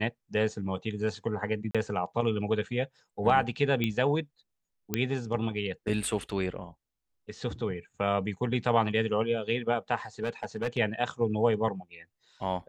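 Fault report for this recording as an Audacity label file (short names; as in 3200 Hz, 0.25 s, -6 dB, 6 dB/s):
1.710000	1.750000	gap 36 ms
3.840000	3.840000	pop -16 dBFS
4.940000	4.940000	pop -12 dBFS
10.230000	10.780000	clipped -25 dBFS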